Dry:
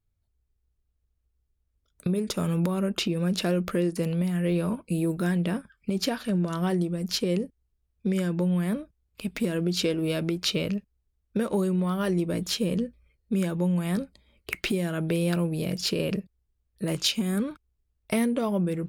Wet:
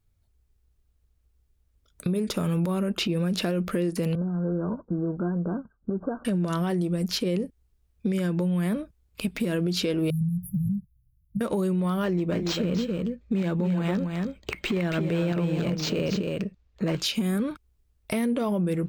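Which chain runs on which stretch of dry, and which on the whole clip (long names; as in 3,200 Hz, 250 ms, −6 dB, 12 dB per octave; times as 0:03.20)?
0:04.15–0:06.25: running median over 25 samples + Chebyshev low-pass filter 1,600 Hz, order 10 + flanger 1.6 Hz, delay 1.5 ms, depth 3.2 ms, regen +58%
0:10.10–0:11.41: parametric band 130 Hz +13 dB + downward compressor, threshold −24 dBFS + linear-phase brick-wall band-stop 210–10,000 Hz
0:12.04–0:17.02: single-tap delay 278 ms −7 dB + linearly interpolated sample-rate reduction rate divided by 4×
whole clip: dynamic equaliser 7,900 Hz, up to −4 dB, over −48 dBFS, Q 1; brickwall limiter −21 dBFS; downward compressor 2 to 1, threshold −34 dBFS; level +7.5 dB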